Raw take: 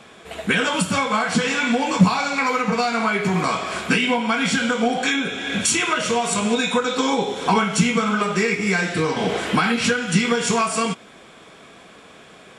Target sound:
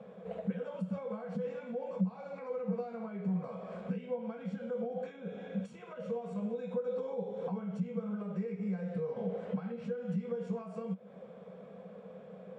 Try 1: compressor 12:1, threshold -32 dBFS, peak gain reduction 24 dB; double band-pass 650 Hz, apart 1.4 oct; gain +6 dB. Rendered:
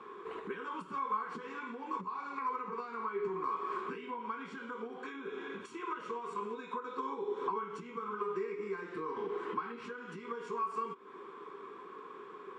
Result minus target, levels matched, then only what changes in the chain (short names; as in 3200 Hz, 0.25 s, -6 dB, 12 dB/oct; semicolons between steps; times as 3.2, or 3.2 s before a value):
250 Hz band -7.5 dB
change: double band-pass 310 Hz, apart 1.4 oct